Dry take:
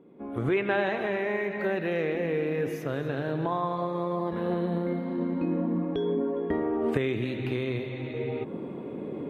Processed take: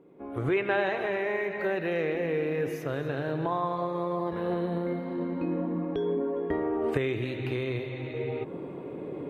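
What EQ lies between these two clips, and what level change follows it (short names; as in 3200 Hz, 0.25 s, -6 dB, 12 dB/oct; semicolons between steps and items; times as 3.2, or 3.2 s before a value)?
bell 220 Hz -10.5 dB 0.35 oct; notch 3400 Hz, Q 24; 0.0 dB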